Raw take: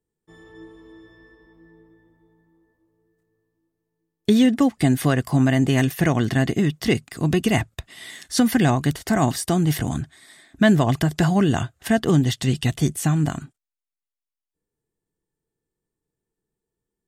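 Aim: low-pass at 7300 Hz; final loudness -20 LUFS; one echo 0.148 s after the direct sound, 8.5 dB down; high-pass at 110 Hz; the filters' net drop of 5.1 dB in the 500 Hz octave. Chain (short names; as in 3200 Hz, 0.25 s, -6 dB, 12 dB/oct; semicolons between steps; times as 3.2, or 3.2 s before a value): HPF 110 Hz; LPF 7300 Hz; bell 500 Hz -7.5 dB; echo 0.148 s -8.5 dB; gain +2 dB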